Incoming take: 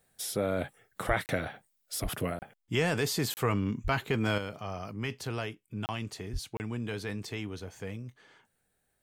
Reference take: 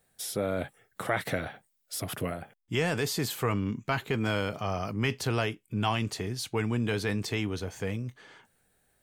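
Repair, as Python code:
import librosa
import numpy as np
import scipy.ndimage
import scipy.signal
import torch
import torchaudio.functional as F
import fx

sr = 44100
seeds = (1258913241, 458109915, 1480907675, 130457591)

y = fx.fix_deplosive(x, sr, at_s=(1.07, 2.02, 3.83, 6.32))
y = fx.fix_interpolate(y, sr, at_s=(1.26, 2.39, 3.34, 5.86, 6.57), length_ms=29.0)
y = fx.fix_level(y, sr, at_s=4.38, step_db=6.5)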